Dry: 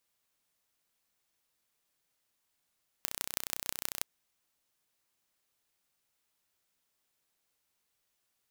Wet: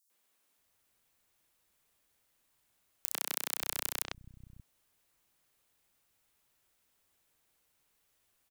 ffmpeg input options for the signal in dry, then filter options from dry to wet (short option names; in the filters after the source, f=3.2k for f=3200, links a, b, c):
-f lavfi -i "aevalsrc='0.668*eq(mod(n,1418),0)*(0.5+0.5*eq(mod(n,7090),0))':d=0.98:s=44100"
-filter_complex "[0:a]lowshelf=f=230:g=5.5,asplit=2[a][b];[b]alimiter=limit=-14.5dB:level=0:latency=1:release=136,volume=-2.5dB[c];[a][c]amix=inputs=2:normalize=0,acrossover=split=180|5100[d][e][f];[e]adelay=100[g];[d]adelay=580[h];[h][g][f]amix=inputs=3:normalize=0"